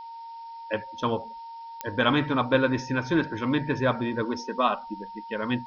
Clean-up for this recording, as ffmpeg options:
ffmpeg -i in.wav -af "adeclick=threshold=4,bandreject=frequency=920:width=30,afftdn=noise_reduction=30:noise_floor=-41" out.wav

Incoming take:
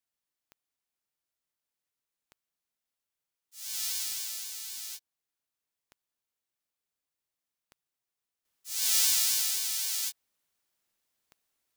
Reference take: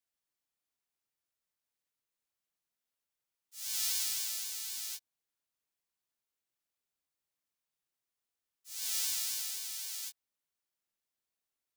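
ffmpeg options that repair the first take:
ffmpeg -i in.wav -af "adeclick=threshold=4,asetnsamples=nb_out_samples=441:pad=0,asendcmd='8.45 volume volume -9dB',volume=0dB" out.wav

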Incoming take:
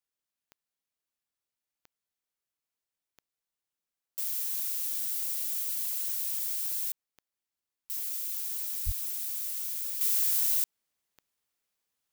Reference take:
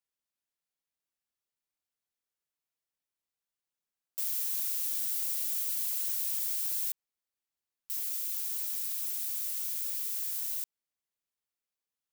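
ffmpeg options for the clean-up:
ffmpeg -i in.wav -filter_complex "[0:a]adeclick=threshold=4,asplit=3[link_01][link_02][link_03];[link_01]afade=type=out:start_time=8.85:duration=0.02[link_04];[link_02]highpass=frequency=140:width=0.5412,highpass=frequency=140:width=1.3066,afade=type=in:start_time=8.85:duration=0.02,afade=type=out:start_time=8.97:duration=0.02[link_05];[link_03]afade=type=in:start_time=8.97:duration=0.02[link_06];[link_04][link_05][link_06]amix=inputs=3:normalize=0,asetnsamples=nb_out_samples=441:pad=0,asendcmd='10.01 volume volume -8dB',volume=0dB" out.wav

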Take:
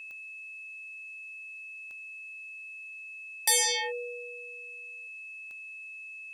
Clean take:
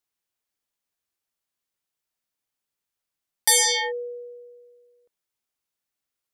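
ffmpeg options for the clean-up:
ffmpeg -i in.wav -af "adeclick=threshold=4,bandreject=frequency=2600:width=30,agate=range=-21dB:threshold=-36dB,asetnsamples=nb_out_samples=441:pad=0,asendcmd='3.26 volume volume 6dB',volume=0dB" out.wav

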